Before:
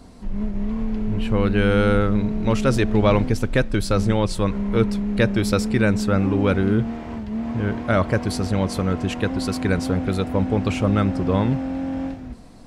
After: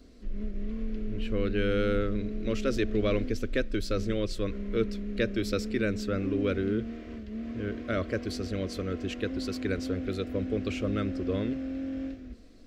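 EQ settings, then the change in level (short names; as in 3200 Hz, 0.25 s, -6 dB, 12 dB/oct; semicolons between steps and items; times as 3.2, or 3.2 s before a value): bell 9600 Hz -13 dB 0.58 oct; fixed phaser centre 360 Hz, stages 4; -6.0 dB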